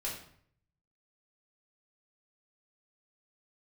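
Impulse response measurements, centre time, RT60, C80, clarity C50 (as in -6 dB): 35 ms, 0.60 s, 8.5 dB, 5.0 dB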